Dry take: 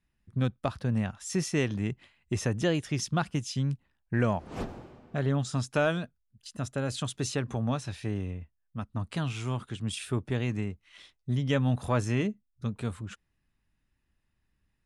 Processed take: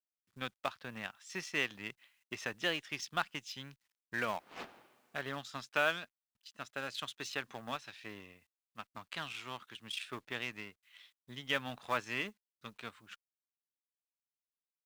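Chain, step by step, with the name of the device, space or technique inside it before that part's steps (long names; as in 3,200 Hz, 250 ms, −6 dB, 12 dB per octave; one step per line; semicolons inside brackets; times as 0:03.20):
phone line with mismatched companding (band-pass filter 390–3,400 Hz; mu-law and A-law mismatch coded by A)
guitar amp tone stack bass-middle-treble 5-5-5
level +12.5 dB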